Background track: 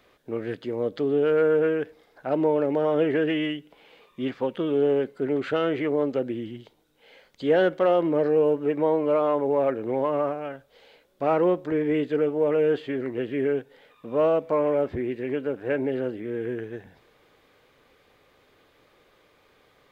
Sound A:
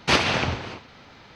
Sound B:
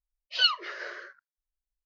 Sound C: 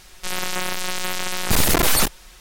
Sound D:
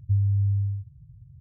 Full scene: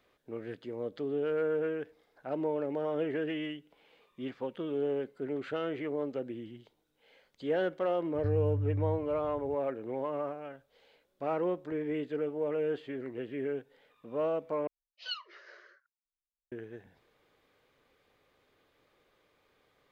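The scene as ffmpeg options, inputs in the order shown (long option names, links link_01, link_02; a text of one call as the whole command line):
ffmpeg -i bed.wav -i cue0.wav -i cue1.wav -i cue2.wav -i cue3.wav -filter_complex "[0:a]volume=-10dB[link_01];[4:a]acompressor=threshold=-27dB:ratio=6:attack=3.2:release=140:knee=1:detection=peak[link_02];[link_01]asplit=2[link_03][link_04];[link_03]atrim=end=14.674[link_05];[2:a]atrim=end=1.85,asetpts=PTS-STARTPTS,volume=-15.5dB[link_06];[link_04]atrim=start=16.516[link_07];[link_02]atrim=end=1.4,asetpts=PTS-STARTPTS,volume=-2.5dB,afade=type=in:duration=0.004:curve=hsin,afade=type=out:start_time=1.396:duration=0.004:curve=hsin,adelay=8150[link_08];[link_05][link_06]acrossfade=duration=0.004:curve1=hsin:curve2=hsin[link_09];[link_09][link_07]acrossfade=duration=0.004:curve1=hsin:curve2=hsin[link_10];[link_10][link_08]amix=inputs=2:normalize=0" out.wav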